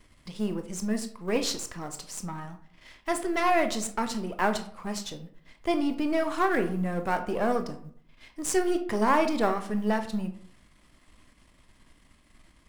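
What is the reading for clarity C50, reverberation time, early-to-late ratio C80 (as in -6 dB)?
11.5 dB, 0.60 s, 15.0 dB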